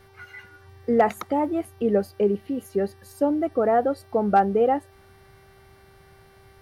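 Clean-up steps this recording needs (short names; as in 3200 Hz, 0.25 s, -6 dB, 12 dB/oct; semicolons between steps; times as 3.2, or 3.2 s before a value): clip repair -9.5 dBFS; de-hum 389.6 Hz, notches 15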